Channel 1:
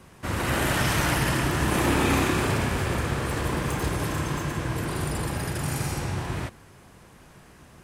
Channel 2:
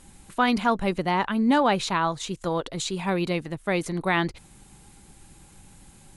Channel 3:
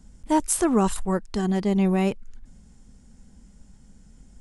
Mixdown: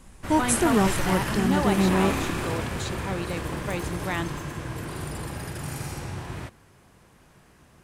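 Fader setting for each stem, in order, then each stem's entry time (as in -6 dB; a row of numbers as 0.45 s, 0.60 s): -5.0 dB, -6.5 dB, -1.0 dB; 0.00 s, 0.00 s, 0.00 s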